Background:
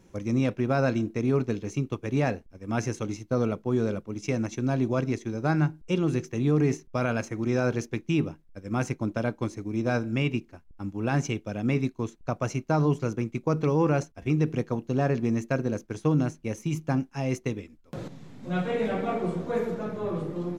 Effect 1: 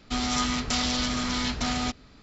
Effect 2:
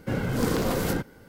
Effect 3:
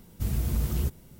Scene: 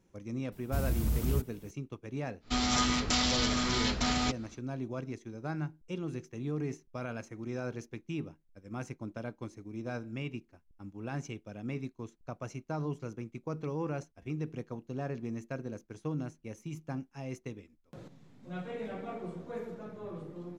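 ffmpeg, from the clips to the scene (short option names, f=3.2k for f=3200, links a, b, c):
-filter_complex "[0:a]volume=-12dB[a];[3:a]atrim=end=1.19,asetpts=PTS-STARTPTS,volume=-3dB,afade=t=in:d=0.004:c=hsin,afade=t=out:st=1.186:d=0.004:c=hsin,adelay=520[b];[1:a]atrim=end=2.22,asetpts=PTS-STARTPTS,volume=-2dB,afade=t=in:d=0.1,afade=t=out:st=2.12:d=0.1,adelay=2400[c];[a][b][c]amix=inputs=3:normalize=0"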